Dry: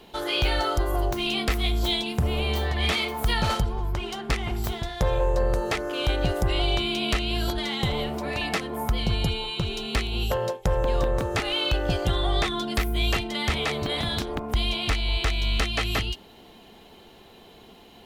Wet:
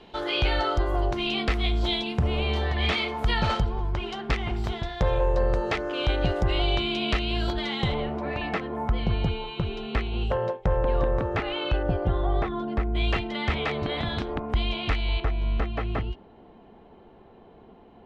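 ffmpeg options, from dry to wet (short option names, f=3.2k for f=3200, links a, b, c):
-af "asetnsamples=n=441:p=0,asendcmd='7.94 lowpass f 2100;11.83 lowpass f 1200;12.95 lowpass f 2700;15.2 lowpass f 1200',lowpass=3.9k"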